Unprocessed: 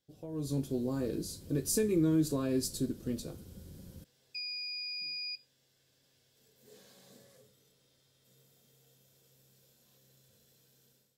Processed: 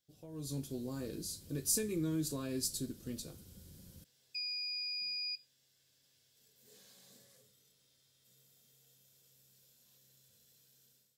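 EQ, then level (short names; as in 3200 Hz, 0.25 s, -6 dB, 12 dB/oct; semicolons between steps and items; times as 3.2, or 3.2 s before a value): tone controls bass +6 dB, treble +2 dB; tilt shelf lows -4.5 dB, about 1300 Hz; low shelf 210 Hz -3 dB; -5.0 dB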